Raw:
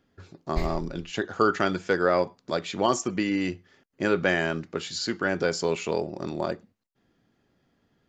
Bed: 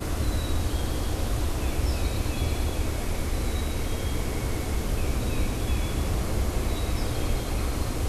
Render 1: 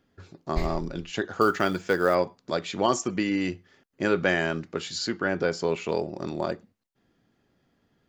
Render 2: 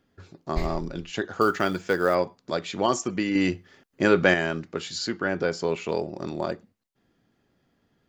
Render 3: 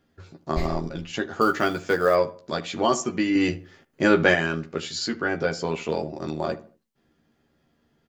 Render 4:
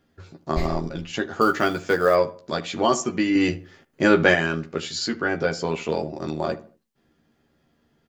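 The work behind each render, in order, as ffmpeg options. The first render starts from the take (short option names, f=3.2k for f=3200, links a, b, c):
-filter_complex "[0:a]asettb=1/sr,asplit=3[a][b][c];[a]atrim=end=1.414[d];[b]atrim=start=1.41:end=2.15,asetpts=PTS-STARTPTS,afade=t=in:d=0.004:c=qsin,afade=t=out:st=0.736:d=0.004:c=qsin,acrusher=bits=7:mode=log:mix=0:aa=0.000001[e];[c]atrim=start=2.146[f];[d][e]acrossfade=d=0.004:c1=hsin:c2=qsin[g];[g][f]acrossfade=d=0.004:c1=qsin:c2=hsin,asettb=1/sr,asplit=3[h][i][j];[h]atrim=end=5.084[k];[i]atrim=start=5.08:end=5.89,asetpts=PTS-STARTPTS,afade=t=in:d=0.004:c=qsin,afade=t=out:st=0.806:d=0.004:c=qsin,lowpass=f=3.3k:p=1[l];[j]atrim=start=5.886[m];[k][l]acrossfade=d=0.004:c1=hsin:c2=qsin[n];[n][m]acrossfade=d=0.004:c1=qsin:c2=hsin"
-filter_complex "[0:a]asettb=1/sr,asplit=3[a][b][c];[a]atrim=end=3.354[d];[b]atrim=start=3.35:end=4.34,asetpts=PTS-STARTPTS,afade=t=in:d=0.004:c=qsin,afade=t=out:st=0.986:d=0.004:c=qsin,acontrast=20[e];[c]atrim=start=4.336[f];[d][e]acrossfade=d=0.004:c1=hsin:c2=qsin[g];[g][f]acrossfade=d=0.004:c1=qsin:c2=hsin"
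-filter_complex "[0:a]asplit=2[a][b];[b]adelay=13,volume=-4dB[c];[a][c]amix=inputs=2:normalize=0,asplit=2[d][e];[e]adelay=76,lowpass=f=1.7k:p=1,volume=-17dB,asplit=2[f][g];[g]adelay=76,lowpass=f=1.7k:p=1,volume=0.38,asplit=2[h][i];[i]adelay=76,lowpass=f=1.7k:p=1,volume=0.38[j];[d][f][h][j]amix=inputs=4:normalize=0"
-af "volume=1.5dB"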